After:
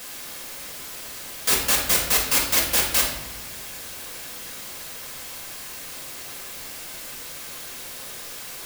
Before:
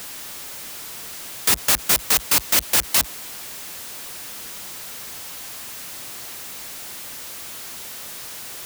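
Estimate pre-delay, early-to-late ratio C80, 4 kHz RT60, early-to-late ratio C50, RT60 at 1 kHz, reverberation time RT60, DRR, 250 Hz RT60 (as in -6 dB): 4 ms, 7.5 dB, 0.70 s, 4.0 dB, 0.80 s, 0.90 s, -5.0 dB, 1.6 s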